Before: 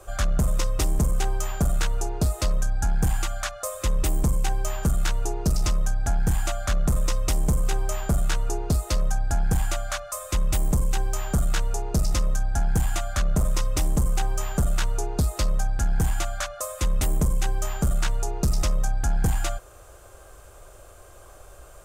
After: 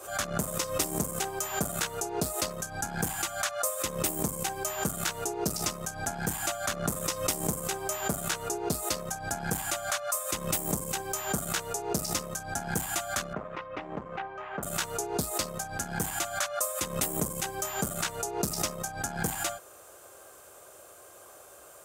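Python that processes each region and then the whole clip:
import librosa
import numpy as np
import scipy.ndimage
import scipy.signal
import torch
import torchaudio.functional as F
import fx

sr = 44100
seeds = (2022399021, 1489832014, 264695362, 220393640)

y = fx.chain(x, sr, fx.lowpass(hz=2400.0, slope=24),
    fx.low_shelf(hz=300.0, db=-10.5), at=(13.33, 14.63))
y = scipy.signal.sosfilt(scipy.signal.butter(2, 210.0, 'highpass', fs=sr, output='sos'), y)
y = fx.high_shelf(y, sr, hz=9300.0, db=9.5)
y = fx.pre_swell(y, sr, db_per_s=98.0)
y = y * librosa.db_to_amplitude(-2.0)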